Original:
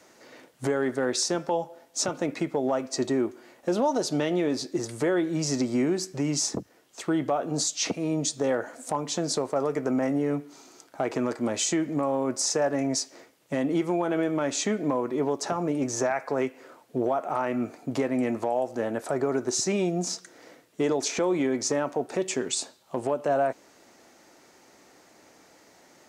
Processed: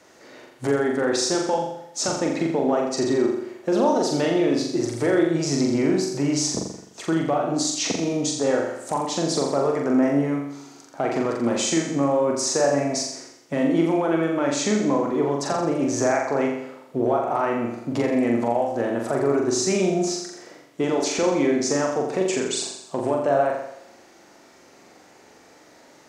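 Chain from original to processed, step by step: treble shelf 8.4 kHz -7.5 dB; on a send: flutter echo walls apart 7.3 m, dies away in 0.78 s; on the sum: trim +2.5 dB

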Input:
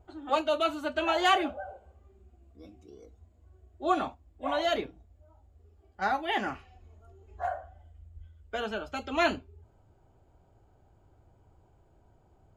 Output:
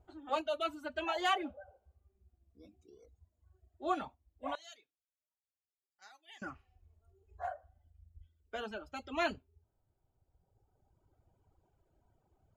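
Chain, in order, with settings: reverb removal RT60 1.9 s; 4.55–6.42 s: band-pass filter 6.9 kHz, Q 2; trim -7 dB

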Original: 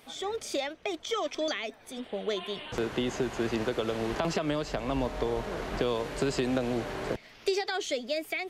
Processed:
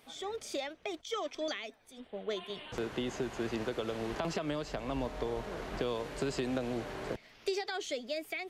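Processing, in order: 1.01–2.50 s: three bands expanded up and down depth 70%; trim -5.5 dB

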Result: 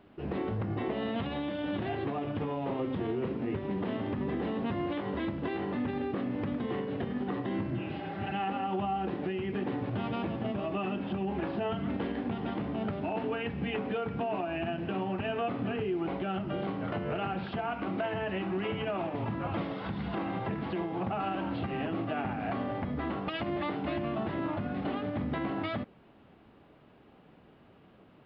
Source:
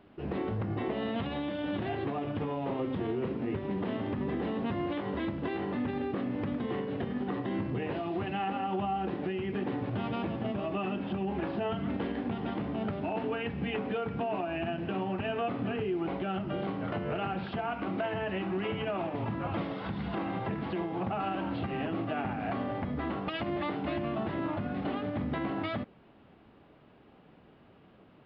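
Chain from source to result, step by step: spectral replace 7.71–8.30 s, 300–2300 Hz both

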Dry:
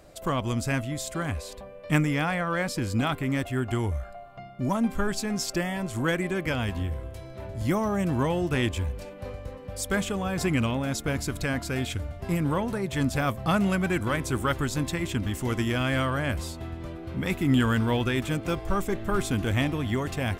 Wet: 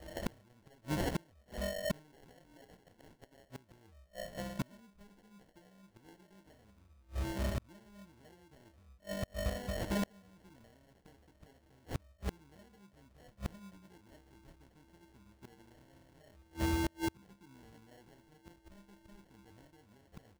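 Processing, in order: 2.12–3.43 s: frequency weighting ITU-R 468; 9.53–10.02 s: compression 6:1, threshold -36 dBFS, peak gain reduction 14 dB; feedback comb 66 Hz, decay 0.21 s, harmonics odd, mix 90%; sample-and-hold 36×; inverted gate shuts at -34 dBFS, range -35 dB; trim +10 dB

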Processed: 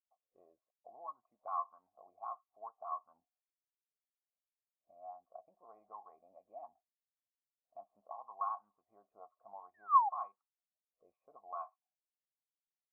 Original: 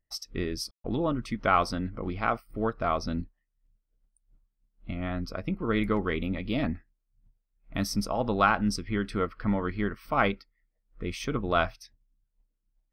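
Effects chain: painted sound fall, 9.74–10.09 s, 770–1900 Hz -15 dBFS; cascade formant filter a; auto-wah 520–1100 Hz, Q 5, up, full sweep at -37 dBFS

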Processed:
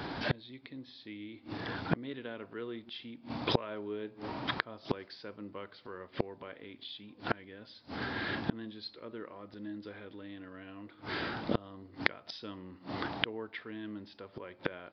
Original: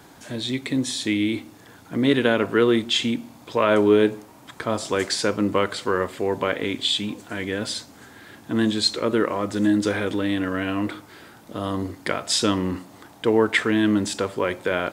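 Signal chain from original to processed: resampled via 11.025 kHz; inverted gate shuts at -23 dBFS, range -32 dB; trim +9 dB

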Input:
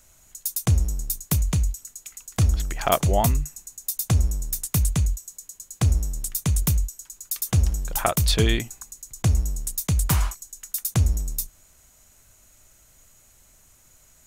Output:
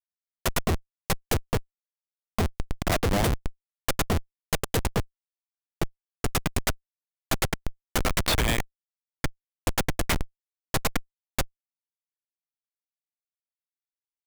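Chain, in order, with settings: high-pass sweep 150 Hz -> 2 kHz, 5.45–6.50 s; Chebyshev shaper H 2 -9 dB, 3 -28 dB, 7 -6 dB, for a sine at -1.5 dBFS; Schmitt trigger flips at -13.5 dBFS; trim +1.5 dB

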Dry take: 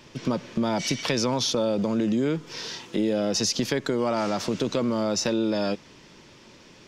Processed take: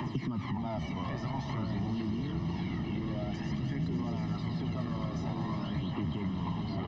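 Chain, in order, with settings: high-pass 110 Hz; ever faster or slower copies 169 ms, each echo -4 st, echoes 3; comb 1 ms, depth 87%; peak limiter -29 dBFS, peak gain reduction 20.5 dB; phaser 0.5 Hz, delay 2 ms, feedback 56%; tape spacing loss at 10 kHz 32 dB; echo with a slow build-up 121 ms, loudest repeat 5, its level -14 dB; three bands compressed up and down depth 100%; trim -1 dB

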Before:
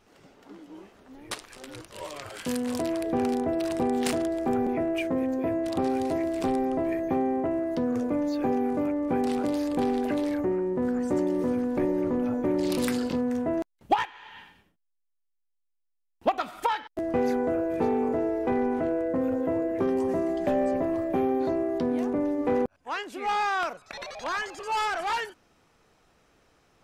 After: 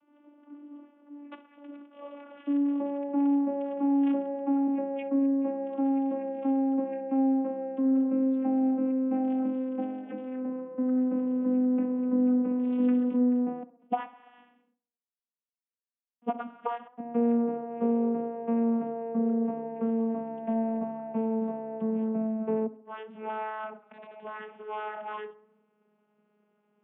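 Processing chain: vocoder on a note that slides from D4, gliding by -6 st; steep low-pass 3.2 kHz 72 dB/octave; peaking EQ 1.9 kHz -4.5 dB 0.42 oct; de-hum 258 Hz, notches 5; on a send: tape echo 66 ms, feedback 57%, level -17 dB, low-pass 2.1 kHz

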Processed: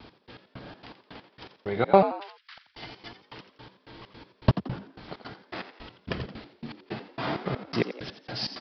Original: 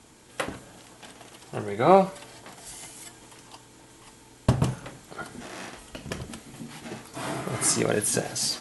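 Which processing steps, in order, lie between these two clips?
2.14–2.58 s: steep high-pass 1.3 kHz 36 dB/octave; in parallel at 0 dB: compression, threshold -41 dBFS, peak gain reduction 27 dB; on the sum: vibrato 0.55 Hz 14 cents; trance gate "x..x..xx.x.." 163 bpm -60 dB; resampled via 11.025 kHz; on a send: frequency-shifting echo 86 ms, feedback 40%, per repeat +70 Hz, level -11.5 dB

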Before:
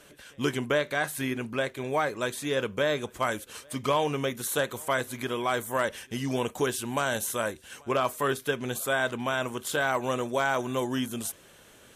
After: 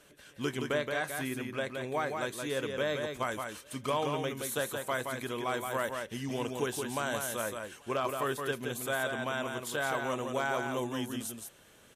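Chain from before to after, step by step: delay 172 ms -5 dB; trim -6 dB

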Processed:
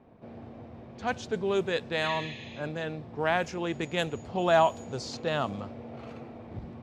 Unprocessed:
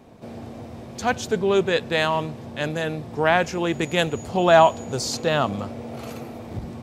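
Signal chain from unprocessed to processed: level-controlled noise filter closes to 2.2 kHz, open at -14.5 dBFS; spectral replace 2.06–2.63 s, 1.7–7 kHz both; trim -8 dB

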